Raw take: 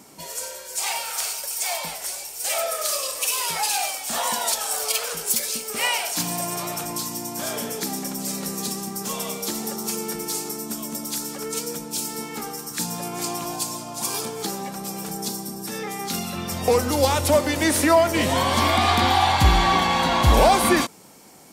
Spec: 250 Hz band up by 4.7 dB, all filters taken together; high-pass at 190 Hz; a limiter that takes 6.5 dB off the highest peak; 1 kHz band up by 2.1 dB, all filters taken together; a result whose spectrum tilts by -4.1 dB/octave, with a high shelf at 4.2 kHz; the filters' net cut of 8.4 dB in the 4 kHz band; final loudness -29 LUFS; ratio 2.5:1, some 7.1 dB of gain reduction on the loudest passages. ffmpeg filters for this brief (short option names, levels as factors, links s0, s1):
-af "highpass=190,equalizer=f=250:t=o:g=7.5,equalizer=f=1000:t=o:g=3,equalizer=f=4000:t=o:g=-7,highshelf=f=4200:g=-7.5,acompressor=threshold=0.0891:ratio=2.5,volume=0.841,alimiter=limit=0.15:level=0:latency=1"